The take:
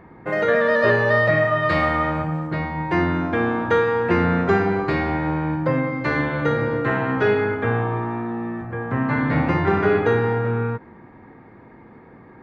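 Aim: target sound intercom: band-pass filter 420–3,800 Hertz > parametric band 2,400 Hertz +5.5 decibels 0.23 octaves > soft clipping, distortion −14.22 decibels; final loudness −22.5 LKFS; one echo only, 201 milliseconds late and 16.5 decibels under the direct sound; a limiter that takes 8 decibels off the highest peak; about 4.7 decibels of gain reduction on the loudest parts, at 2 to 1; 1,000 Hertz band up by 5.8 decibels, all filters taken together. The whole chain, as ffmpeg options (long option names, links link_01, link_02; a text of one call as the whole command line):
ffmpeg -i in.wav -af "equalizer=frequency=1000:width_type=o:gain=7.5,acompressor=threshold=-20dB:ratio=2,alimiter=limit=-16dB:level=0:latency=1,highpass=420,lowpass=3800,equalizer=frequency=2400:width_type=o:width=0.23:gain=5.5,aecho=1:1:201:0.15,asoftclip=threshold=-23.5dB,volume=6.5dB" out.wav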